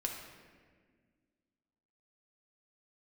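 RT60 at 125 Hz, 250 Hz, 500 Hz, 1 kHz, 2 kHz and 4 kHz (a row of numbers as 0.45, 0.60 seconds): 2.2, 2.5, 1.9, 1.4, 1.6, 1.1 seconds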